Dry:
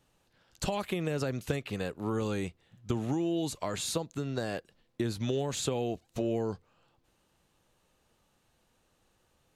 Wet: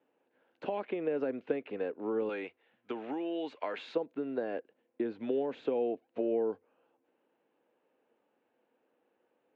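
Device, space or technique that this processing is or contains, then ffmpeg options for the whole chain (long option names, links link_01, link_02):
bass cabinet: -filter_complex "[0:a]highpass=frequency=240:width=0.5412,highpass=frequency=240:width=1.3066,highpass=70,equalizer=frequency=95:width_type=q:width=4:gain=10,equalizer=frequency=180:width_type=q:width=4:gain=-4,equalizer=frequency=270:width_type=q:width=4:gain=4,equalizer=frequency=470:width_type=q:width=4:gain=6,equalizer=frequency=1200:width_type=q:width=4:gain=-7,equalizer=frequency=1900:width_type=q:width=4:gain=-4,lowpass=frequency=2300:width=0.5412,lowpass=frequency=2300:width=1.3066,asettb=1/sr,asplit=3[link_01][link_02][link_03];[link_01]atrim=end=2.294[link_04];[link_02]atrim=start=2.29:end=3.95,asetpts=PTS-STARTPTS,afade=type=in:duration=0.004:curve=qsin,afade=type=out:start_time=1.656:duration=0.004:curve=qsin,tiltshelf=frequency=650:gain=-9[link_05];[link_03]atrim=start=3.946[link_06];[link_04][link_05]acrossfade=duration=0.004:curve1=hsin:curve2=qsin[link_07];[link_07][link_06]acrossfade=duration=0.004:curve1=qsin:curve2=hsin,volume=-2dB"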